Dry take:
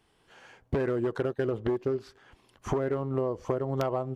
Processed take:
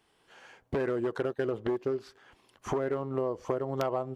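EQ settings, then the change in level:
low-shelf EQ 170 Hz −9.5 dB
0.0 dB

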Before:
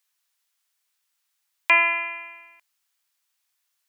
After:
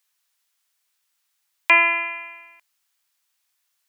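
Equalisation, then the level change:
dynamic equaliser 330 Hz, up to +5 dB, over −52 dBFS, Q 4.3
+2.5 dB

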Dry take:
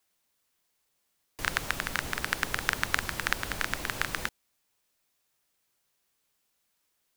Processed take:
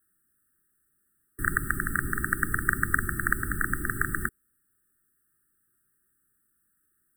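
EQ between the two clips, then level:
linear-phase brick-wall band-stop 410–1,200 Hz
linear-phase brick-wall band-stop 1,900–7,700 Hz
low-shelf EQ 410 Hz +3.5 dB
+5.0 dB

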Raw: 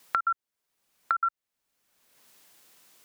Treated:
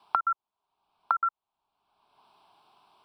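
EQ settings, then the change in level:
high-frequency loss of the air 110 metres
flat-topped bell 640 Hz +14.5 dB
phaser with its sweep stopped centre 1,900 Hz, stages 6
0.0 dB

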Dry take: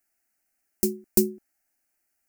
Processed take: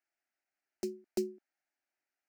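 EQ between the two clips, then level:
three-way crossover with the lows and the highs turned down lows −17 dB, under 280 Hz, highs −24 dB, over 5,200 Hz
−7.0 dB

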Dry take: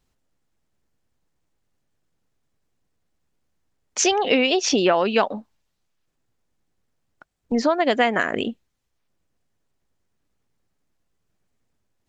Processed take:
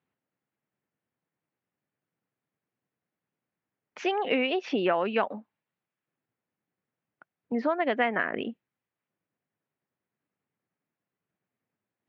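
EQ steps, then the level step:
high-pass filter 120 Hz 24 dB per octave
transistor ladder low-pass 3,000 Hz, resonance 25%
−1.5 dB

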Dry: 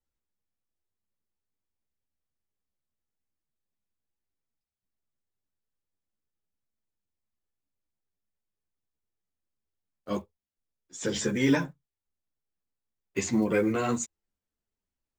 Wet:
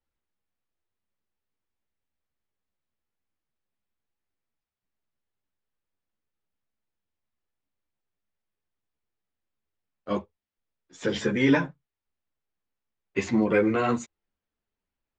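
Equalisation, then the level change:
low-pass filter 3,200 Hz 12 dB per octave
low-shelf EQ 350 Hz −4 dB
+5.0 dB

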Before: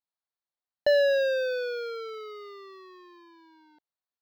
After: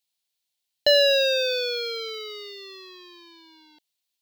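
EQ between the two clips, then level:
high shelf with overshoot 2,100 Hz +11.5 dB, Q 1.5
notch filter 1,200 Hz, Q 11
+2.5 dB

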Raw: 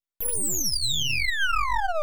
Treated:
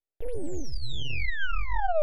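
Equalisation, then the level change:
low-pass filter 1,400 Hz 12 dB per octave
phaser with its sweep stopped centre 460 Hz, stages 4
+4.5 dB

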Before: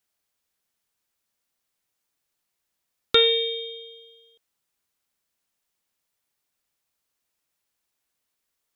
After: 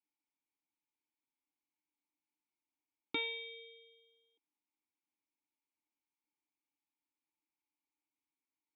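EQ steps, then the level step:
formant filter u
dynamic equaliser 450 Hz, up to −5 dB, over −53 dBFS
+1.0 dB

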